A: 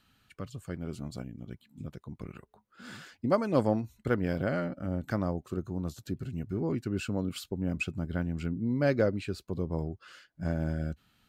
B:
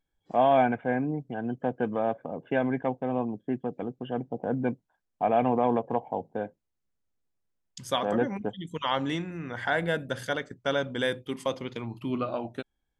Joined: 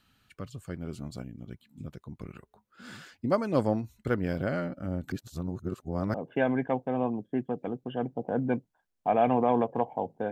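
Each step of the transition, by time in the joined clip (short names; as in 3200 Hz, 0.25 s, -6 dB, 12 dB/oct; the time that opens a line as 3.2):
A
5.12–6.14 reverse
6.14 switch to B from 2.29 s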